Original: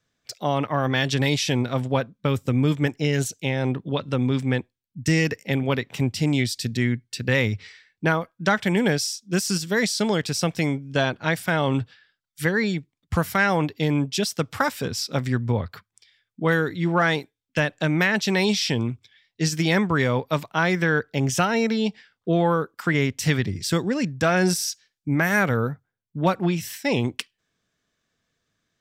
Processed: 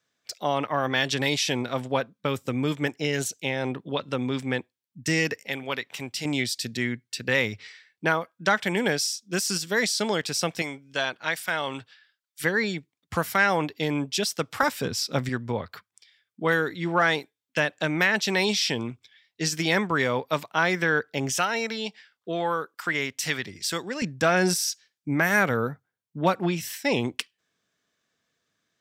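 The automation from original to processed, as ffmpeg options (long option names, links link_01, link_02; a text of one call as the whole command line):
ffmpeg -i in.wav -af "asetnsamples=nb_out_samples=441:pad=0,asendcmd='5.47 highpass f 1100;6.25 highpass f 410;10.62 highpass f 1200;12.44 highpass f 360;14.63 highpass f 130;15.29 highpass f 370;21.32 highpass f 920;24.02 highpass f 240',highpass=frequency=380:poles=1" out.wav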